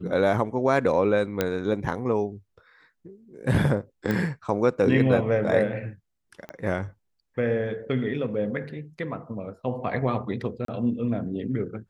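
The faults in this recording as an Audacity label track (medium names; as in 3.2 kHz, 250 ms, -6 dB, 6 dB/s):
1.410000	1.410000	pop -9 dBFS
4.110000	4.110000	pop -15 dBFS
6.490000	6.490000	pop -23 dBFS
10.650000	10.680000	dropout 33 ms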